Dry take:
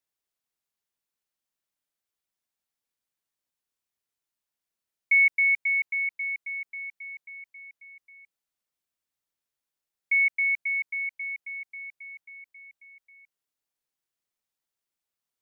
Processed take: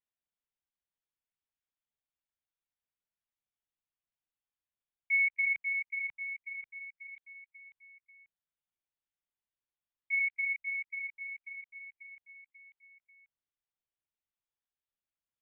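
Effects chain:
linear-prediction vocoder at 8 kHz pitch kept
level −8 dB

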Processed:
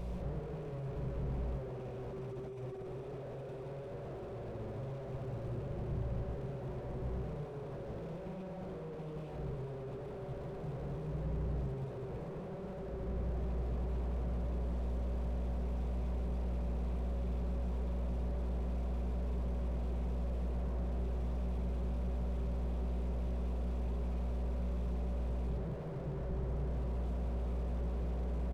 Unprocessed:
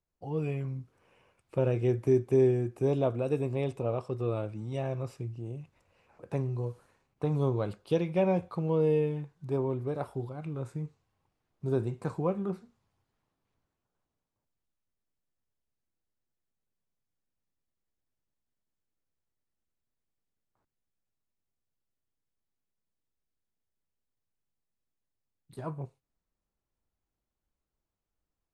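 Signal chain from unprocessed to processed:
compressor on every frequency bin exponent 0.4
parametric band 1,600 Hz −13.5 dB 0.53 octaves
mains hum 60 Hz, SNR 11 dB
parametric band 260 Hz −11 dB 0.95 octaves
comb filter 5.3 ms, depth 33%
multi-tap delay 54/183 ms −9/−15.5 dB
convolution reverb RT60 2.1 s, pre-delay 93 ms, DRR −7 dB
compressor whose output falls as the input rises −30 dBFS, ratio −1
mains-hum notches 50/100/150/200/250/300/350/400/450/500 Hz
slew-rate limiting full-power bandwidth 5.2 Hz
level −4.5 dB

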